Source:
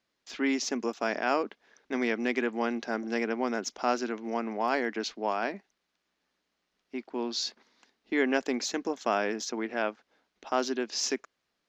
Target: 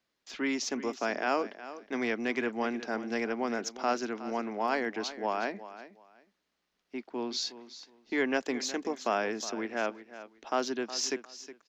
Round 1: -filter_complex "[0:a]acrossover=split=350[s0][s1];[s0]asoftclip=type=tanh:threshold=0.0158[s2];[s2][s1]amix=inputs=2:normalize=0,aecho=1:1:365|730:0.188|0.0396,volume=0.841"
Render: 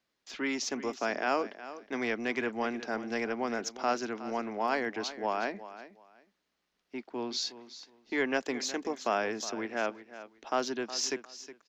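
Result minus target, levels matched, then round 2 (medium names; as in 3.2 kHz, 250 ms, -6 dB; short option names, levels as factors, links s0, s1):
saturation: distortion +7 dB
-filter_complex "[0:a]acrossover=split=350[s0][s1];[s0]asoftclip=type=tanh:threshold=0.0316[s2];[s2][s1]amix=inputs=2:normalize=0,aecho=1:1:365|730:0.188|0.0396,volume=0.841"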